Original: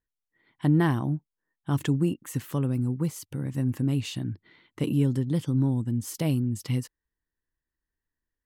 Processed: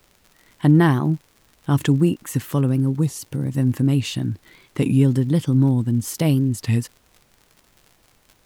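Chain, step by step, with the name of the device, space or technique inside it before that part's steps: warped LP (warped record 33 1/3 rpm, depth 160 cents; crackle 77 per s -44 dBFS; pink noise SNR 39 dB); 2.95–3.57 s: dynamic bell 1.7 kHz, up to -6 dB, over -51 dBFS, Q 0.77; trim +7.5 dB

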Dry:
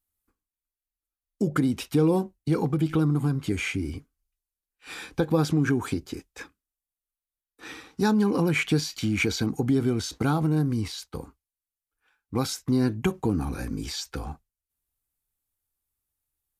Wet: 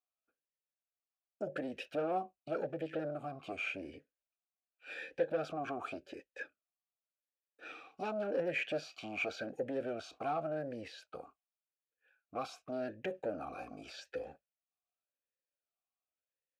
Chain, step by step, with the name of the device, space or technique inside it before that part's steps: talk box (valve stage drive 23 dB, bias 0.2; talking filter a-e 0.88 Hz); trim +6 dB

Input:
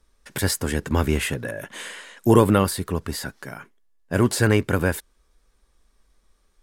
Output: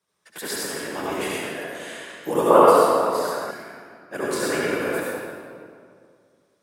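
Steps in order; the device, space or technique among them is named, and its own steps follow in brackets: whispering ghost (whisper effect; high-pass 370 Hz 12 dB/octave; reverberation RT60 2.2 s, pre-delay 61 ms, DRR -6 dB); 2.50–3.51 s: high-order bell 780 Hz +11 dB; trim -7.5 dB

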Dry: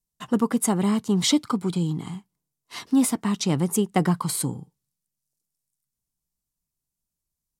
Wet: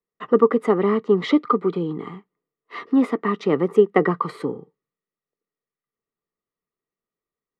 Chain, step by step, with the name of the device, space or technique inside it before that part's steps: 0.84–2.00 s: low-pass 7.3 kHz 12 dB/octave; three-band isolator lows -16 dB, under 190 Hz, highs -24 dB, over 3.8 kHz; inside a helmet (treble shelf 3.7 kHz -8.5 dB; small resonant body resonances 440/1200/1900 Hz, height 15 dB, ringing for 25 ms)

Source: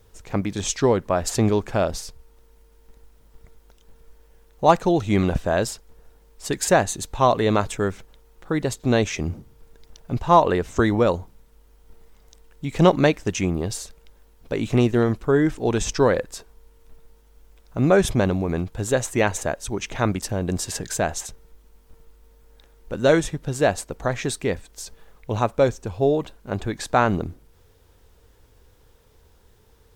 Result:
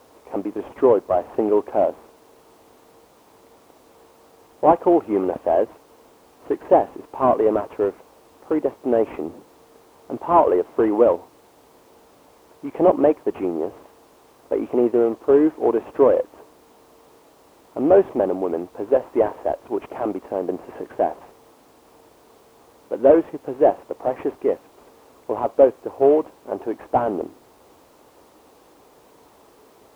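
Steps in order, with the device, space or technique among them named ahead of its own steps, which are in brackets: army field radio (band-pass 380–3300 Hz; CVSD coder 16 kbps; white noise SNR 18 dB); high-pass 52 Hz; tilt EQ -2.5 dB/octave; high-order bell 540 Hz +11.5 dB 2.5 oct; trim -6.5 dB

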